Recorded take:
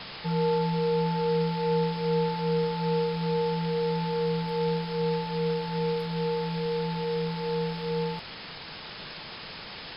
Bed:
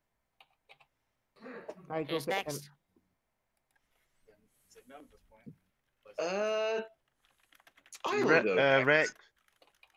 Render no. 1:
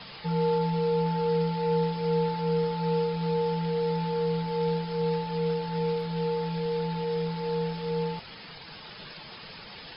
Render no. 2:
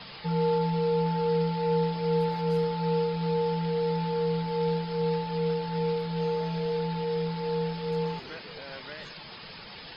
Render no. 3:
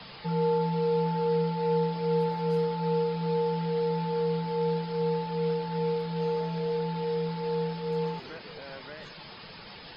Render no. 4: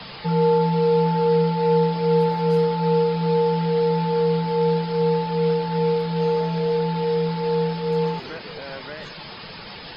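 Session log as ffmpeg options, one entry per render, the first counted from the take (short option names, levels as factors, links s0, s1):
-af "afftdn=nr=9:nf=-42"
-filter_complex "[1:a]volume=0.119[s0];[0:a][s0]amix=inputs=2:normalize=0"
-filter_complex "[0:a]acrossover=split=120|1400[s0][s1][s2];[s0]acompressor=threshold=0.002:ratio=6[s3];[s2]alimiter=level_in=6.31:limit=0.0631:level=0:latency=1,volume=0.158[s4];[s3][s1][s4]amix=inputs=3:normalize=0"
-af "volume=2.51"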